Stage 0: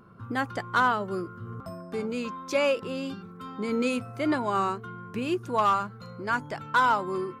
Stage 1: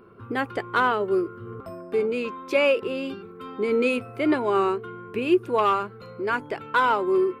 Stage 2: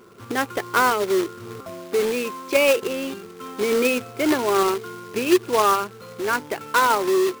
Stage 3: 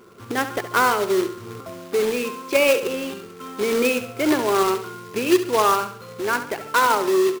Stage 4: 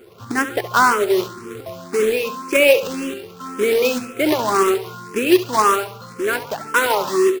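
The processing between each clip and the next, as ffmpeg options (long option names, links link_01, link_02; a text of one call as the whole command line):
ffmpeg -i in.wav -af "equalizer=frequency=160:width_type=o:width=0.67:gain=-7,equalizer=frequency=400:width_type=o:width=0.67:gain=12,equalizer=frequency=2500:width_type=o:width=0.67:gain=7,equalizer=frequency=6300:width_type=o:width=0.67:gain=-9" out.wav
ffmpeg -i in.wav -af "acrusher=bits=2:mode=log:mix=0:aa=0.000001,lowshelf=frequency=110:gain=-8,volume=2.5dB" out.wav
ffmpeg -i in.wav -af "aecho=1:1:69|138|207|276:0.282|0.113|0.0451|0.018" out.wav
ffmpeg -i in.wav -filter_complex "[0:a]asplit=2[link_01][link_02];[link_02]afreqshift=1.9[link_03];[link_01][link_03]amix=inputs=2:normalize=1,volume=5.5dB" out.wav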